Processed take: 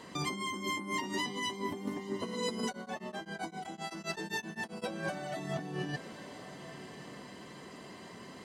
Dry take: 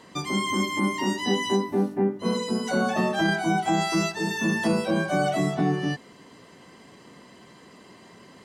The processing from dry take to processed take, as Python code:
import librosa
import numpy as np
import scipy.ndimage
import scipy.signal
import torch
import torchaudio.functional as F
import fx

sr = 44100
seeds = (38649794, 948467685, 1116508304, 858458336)

y = fx.over_compress(x, sr, threshold_db=-32.0, ratio=-1.0)
y = fx.echo_diffused(y, sr, ms=1069, feedback_pct=42, wet_db=-13.5)
y = fx.tremolo_abs(y, sr, hz=7.7, at=(2.67, 4.84))
y = y * 10.0 ** (-6.0 / 20.0)